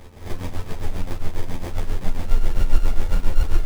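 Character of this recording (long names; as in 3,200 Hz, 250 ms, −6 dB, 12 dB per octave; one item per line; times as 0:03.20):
a buzz of ramps at a fixed pitch in blocks of 8 samples
tremolo triangle 7.4 Hz, depth 80%
aliases and images of a low sample rate 1,400 Hz, jitter 0%
a shimmering, thickened sound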